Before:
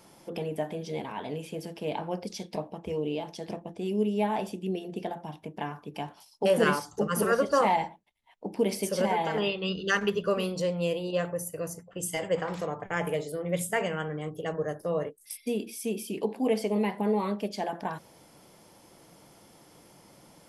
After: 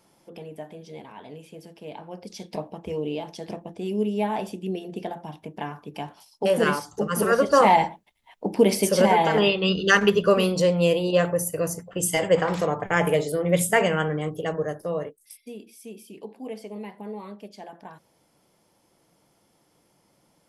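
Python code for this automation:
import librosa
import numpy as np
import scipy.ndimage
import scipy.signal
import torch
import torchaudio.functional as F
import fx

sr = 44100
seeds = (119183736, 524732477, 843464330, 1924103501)

y = fx.gain(x, sr, db=fx.line((2.1, -6.5), (2.52, 2.0), (7.05, 2.0), (7.78, 8.5), (14.04, 8.5), (15.08, 0.0), (15.47, -9.5)))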